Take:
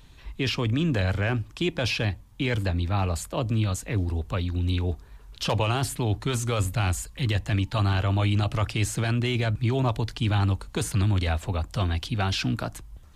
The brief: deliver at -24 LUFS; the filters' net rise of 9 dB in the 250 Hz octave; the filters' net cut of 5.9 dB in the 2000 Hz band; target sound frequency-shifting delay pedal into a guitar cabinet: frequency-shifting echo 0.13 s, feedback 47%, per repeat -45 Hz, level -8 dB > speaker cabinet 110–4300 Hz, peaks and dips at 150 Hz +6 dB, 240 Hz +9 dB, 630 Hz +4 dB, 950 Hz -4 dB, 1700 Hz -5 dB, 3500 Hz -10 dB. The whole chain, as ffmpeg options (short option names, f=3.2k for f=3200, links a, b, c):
-filter_complex "[0:a]equalizer=f=250:t=o:g=4.5,equalizer=f=2k:t=o:g=-4.5,asplit=6[a][b][c][d][e][f];[b]adelay=130,afreqshift=-45,volume=-8dB[g];[c]adelay=260,afreqshift=-90,volume=-14.6dB[h];[d]adelay=390,afreqshift=-135,volume=-21.1dB[i];[e]adelay=520,afreqshift=-180,volume=-27.7dB[j];[f]adelay=650,afreqshift=-225,volume=-34.2dB[k];[a][g][h][i][j][k]amix=inputs=6:normalize=0,highpass=110,equalizer=f=150:t=q:w=4:g=6,equalizer=f=240:t=q:w=4:g=9,equalizer=f=630:t=q:w=4:g=4,equalizer=f=950:t=q:w=4:g=-4,equalizer=f=1.7k:t=q:w=4:g=-5,equalizer=f=3.5k:t=q:w=4:g=-10,lowpass=f=4.3k:w=0.5412,lowpass=f=4.3k:w=1.3066,volume=-0.5dB"